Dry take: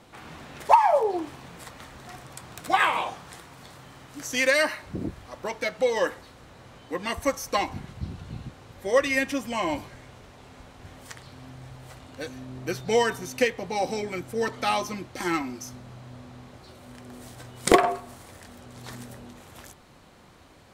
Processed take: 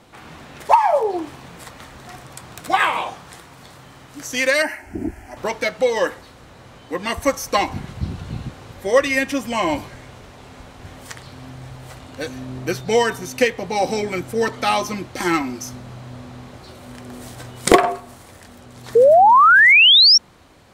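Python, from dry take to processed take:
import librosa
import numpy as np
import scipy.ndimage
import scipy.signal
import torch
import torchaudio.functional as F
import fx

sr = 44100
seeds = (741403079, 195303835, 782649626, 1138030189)

p1 = fx.rider(x, sr, range_db=5, speed_s=0.5)
p2 = x + (p1 * 10.0 ** (1.0 / 20.0))
p3 = fx.fixed_phaser(p2, sr, hz=760.0, stages=8, at=(4.62, 5.37))
p4 = fx.spec_paint(p3, sr, seeds[0], shape='rise', start_s=18.95, length_s=1.23, low_hz=440.0, high_hz=5700.0, level_db=-9.0)
y = p4 * 10.0 ** (-1.0 / 20.0)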